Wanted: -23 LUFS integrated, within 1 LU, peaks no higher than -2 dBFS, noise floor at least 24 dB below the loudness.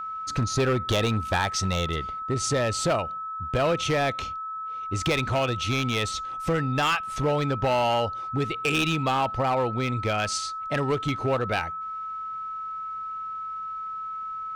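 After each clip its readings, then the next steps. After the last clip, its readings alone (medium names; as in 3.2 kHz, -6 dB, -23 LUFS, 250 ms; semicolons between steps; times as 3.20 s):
clipped samples 1.6%; clipping level -18.0 dBFS; steady tone 1.3 kHz; tone level -31 dBFS; loudness -26.5 LUFS; peak level -18.0 dBFS; loudness target -23.0 LUFS
-> clip repair -18 dBFS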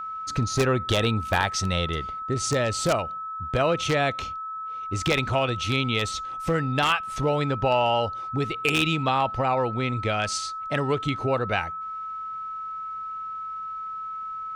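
clipped samples 0.0%; steady tone 1.3 kHz; tone level -31 dBFS
-> band-stop 1.3 kHz, Q 30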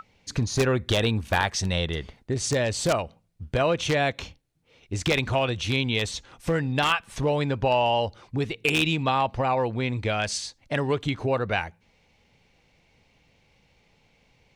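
steady tone not found; loudness -25.5 LUFS; peak level -8.5 dBFS; loudness target -23.0 LUFS
-> trim +2.5 dB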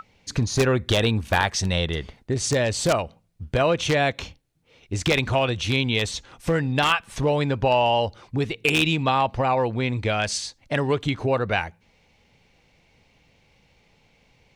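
loudness -23.0 LUFS; peak level -6.0 dBFS; noise floor -62 dBFS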